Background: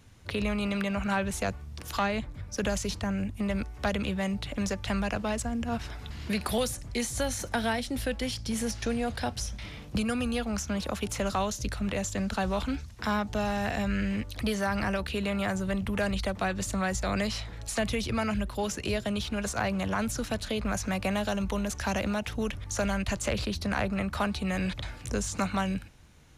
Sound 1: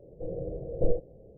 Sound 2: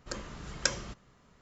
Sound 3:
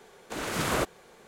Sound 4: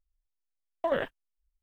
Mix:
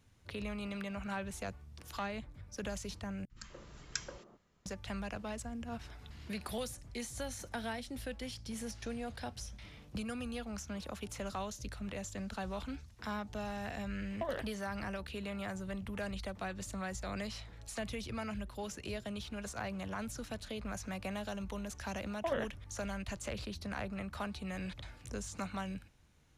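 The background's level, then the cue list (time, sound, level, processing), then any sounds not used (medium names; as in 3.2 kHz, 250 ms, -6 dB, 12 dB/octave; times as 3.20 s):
background -11 dB
3.25 s: replace with 2 -9.5 dB + three bands offset in time lows, highs, mids 50/180 ms, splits 210/1100 Hz
13.37 s: add 4 -9.5 dB + three bands compressed up and down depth 40%
21.40 s: add 4 -7 dB + spectral gate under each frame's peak -45 dB strong
not used: 1, 3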